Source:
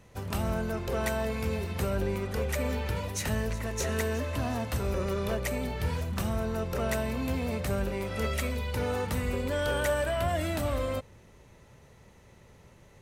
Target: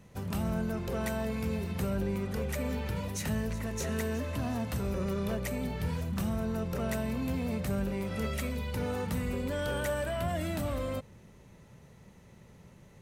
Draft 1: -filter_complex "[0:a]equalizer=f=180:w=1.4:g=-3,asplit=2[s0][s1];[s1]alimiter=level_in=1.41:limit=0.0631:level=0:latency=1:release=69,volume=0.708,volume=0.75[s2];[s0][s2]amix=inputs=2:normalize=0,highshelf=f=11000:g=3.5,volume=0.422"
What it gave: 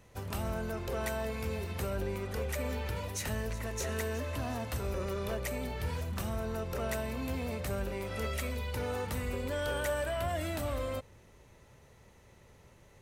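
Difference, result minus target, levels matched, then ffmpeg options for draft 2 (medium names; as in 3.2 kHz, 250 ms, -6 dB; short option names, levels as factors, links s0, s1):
250 Hz band -5.0 dB
-filter_complex "[0:a]equalizer=f=180:w=1.4:g=8.5,asplit=2[s0][s1];[s1]alimiter=level_in=1.41:limit=0.0631:level=0:latency=1:release=69,volume=0.708,volume=0.75[s2];[s0][s2]amix=inputs=2:normalize=0,highshelf=f=11000:g=3.5,volume=0.422"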